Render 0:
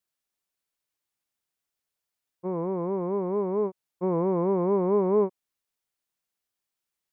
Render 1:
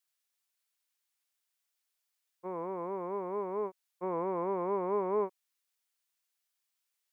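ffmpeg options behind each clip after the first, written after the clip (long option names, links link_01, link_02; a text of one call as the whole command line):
ffmpeg -i in.wav -af "highpass=frequency=1500:poles=1,volume=3dB" out.wav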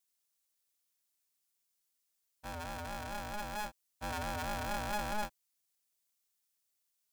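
ffmpeg -i in.wav -af "bass=frequency=250:gain=8,treble=frequency=4000:gain=9,aeval=exprs='val(0)*sgn(sin(2*PI*420*n/s))':channel_layout=same,volume=-6dB" out.wav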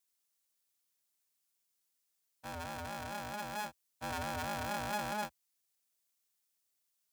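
ffmpeg -i in.wav -af "highpass=frequency=70:width=0.5412,highpass=frequency=70:width=1.3066" out.wav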